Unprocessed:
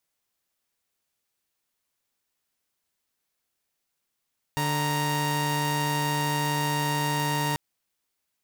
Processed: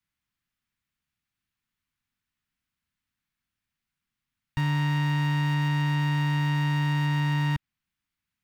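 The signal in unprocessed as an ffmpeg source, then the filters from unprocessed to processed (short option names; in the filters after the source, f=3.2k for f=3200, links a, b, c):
-f lavfi -i "aevalsrc='0.0596*((2*mod(146.83*t,1)-1)+(2*mod(932.33*t,1)-1))':d=2.99:s=44100"
-filter_complex "[0:a]bass=f=250:g=7,treble=f=4k:g=-12,acrossover=split=310|920|4900[a][b][c][d];[b]asuperstop=centerf=640:order=4:qfactor=0.52[e];[d]alimiter=level_in=19dB:limit=-24dB:level=0:latency=1:release=417,volume=-19dB[f];[a][e][c][f]amix=inputs=4:normalize=0"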